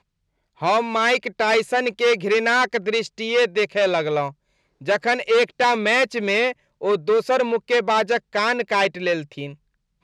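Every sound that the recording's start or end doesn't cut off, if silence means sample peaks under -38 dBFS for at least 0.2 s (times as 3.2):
0.6–4.31
4.81–6.52
6.81–9.54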